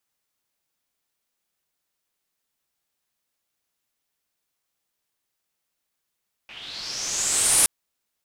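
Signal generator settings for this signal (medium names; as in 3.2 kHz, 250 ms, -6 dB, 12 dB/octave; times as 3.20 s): swept filtered noise white, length 1.17 s lowpass, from 2.5 kHz, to 10 kHz, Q 5, linear, gain ramp +21.5 dB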